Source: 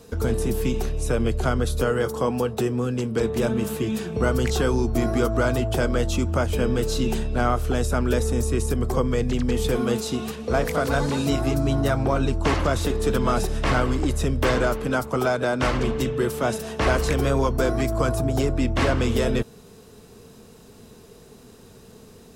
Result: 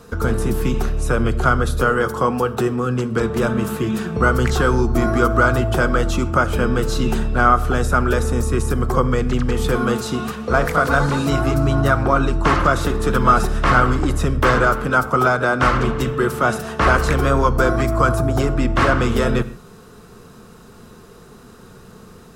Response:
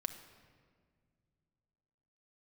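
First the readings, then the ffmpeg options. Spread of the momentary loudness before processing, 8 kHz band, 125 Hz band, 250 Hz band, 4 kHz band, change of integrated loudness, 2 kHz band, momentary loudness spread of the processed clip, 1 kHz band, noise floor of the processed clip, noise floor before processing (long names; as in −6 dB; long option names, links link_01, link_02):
3 LU, +1.5 dB, +4.5 dB, +3.5 dB, +2.0 dB, +5.5 dB, +9.5 dB, 5 LU, +10.0 dB, −43 dBFS, −48 dBFS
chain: -filter_complex "[0:a]equalizer=frequency=1300:width_type=o:width=0.8:gain=12,asplit=2[link_01][link_02];[1:a]atrim=start_sample=2205,afade=type=out:start_time=0.2:duration=0.01,atrim=end_sample=9261,lowshelf=frequency=380:gain=6.5[link_03];[link_02][link_03]afir=irnorm=-1:irlink=0,volume=3dB[link_04];[link_01][link_04]amix=inputs=2:normalize=0,volume=-6dB"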